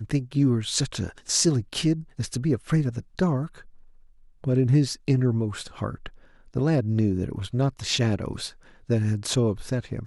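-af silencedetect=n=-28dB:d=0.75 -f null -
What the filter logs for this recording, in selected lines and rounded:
silence_start: 3.46
silence_end: 4.44 | silence_duration: 0.98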